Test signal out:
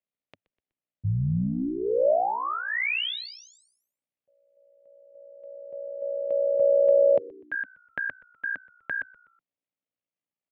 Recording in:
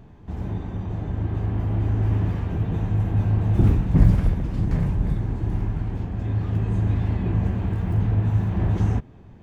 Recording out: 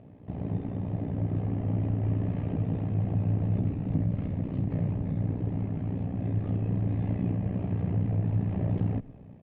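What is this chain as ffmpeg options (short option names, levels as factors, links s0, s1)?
-filter_complex "[0:a]equalizer=f=260:t=o:w=1:g=15,acompressor=threshold=0.158:ratio=6,tremolo=f=60:d=0.824,highpass=100,equalizer=f=100:t=q:w=4:g=4,equalizer=f=230:t=q:w=4:g=-9,equalizer=f=340:t=q:w=4:g=-9,equalizer=f=590:t=q:w=4:g=6,equalizer=f=990:t=q:w=4:g=-5,equalizer=f=1500:t=q:w=4:g=-8,lowpass=f=3000:w=0.5412,lowpass=f=3000:w=1.3066,asplit=2[s0][s1];[s1]asplit=3[s2][s3][s4];[s2]adelay=124,afreqshift=-87,volume=0.0708[s5];[s3]adelay=248,afreqshift=-174,volume=0.0331[s6];[s4]adelay=372,afreqshift=-261,volume=0.0157[s7];[s5][s6][s7]amix=inputs=3:normalize=0[s8];[s0][s8]amix=inputs=2:normalize=0,volume=0.841"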